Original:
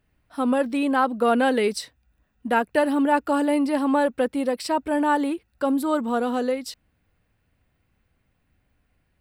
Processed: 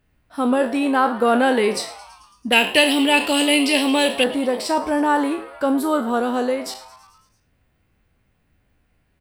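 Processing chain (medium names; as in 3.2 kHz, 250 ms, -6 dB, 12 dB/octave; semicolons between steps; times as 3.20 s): spectral sustain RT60 0.34 s; 2.52–4.24 s: resonant high shelf 1.9 kHz +12 dB, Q 3; on a send: frequency-shifting echo 110 ms, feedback 64%, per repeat +130 Hz, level -18 dB; on the sum: trim +2.5 dB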